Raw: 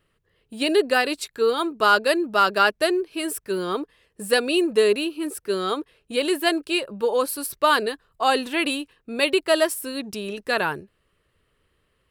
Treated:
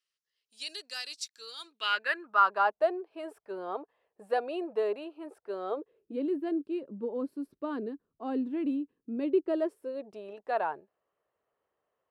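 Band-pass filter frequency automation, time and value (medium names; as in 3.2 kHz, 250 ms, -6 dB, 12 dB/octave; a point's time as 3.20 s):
band-pass filter, Q 3.3
1.60 s 5.6 kHz
2.03 s 1.8 kHz
2.78 s 730 Hz
5.57 s 730 Hz
6.26 s 260 Hz
9.14 s 260 Hz
10.32 s 740 Hz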